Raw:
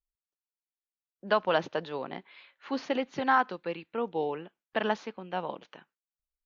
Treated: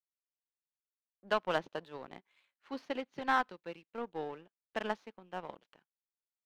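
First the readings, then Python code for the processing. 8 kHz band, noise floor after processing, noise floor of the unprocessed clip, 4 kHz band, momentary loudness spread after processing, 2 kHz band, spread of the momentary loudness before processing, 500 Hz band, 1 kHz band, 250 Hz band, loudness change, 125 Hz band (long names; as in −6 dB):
can't be measured, below −85 dBFS, below −85 dBFS, −6.0 dB, 17 LU, −5.5 dB, 15 LU, −7.5 dB, −6.5 dB, −8.0 dB, −6.5 dB, −8.0 dB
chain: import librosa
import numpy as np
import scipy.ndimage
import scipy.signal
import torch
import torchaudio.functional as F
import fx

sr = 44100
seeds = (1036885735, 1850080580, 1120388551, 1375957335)

y = fx.power_curve(x, sr, exponent=1.4)
y = y * librosa.db_to_amplitude(-3.5)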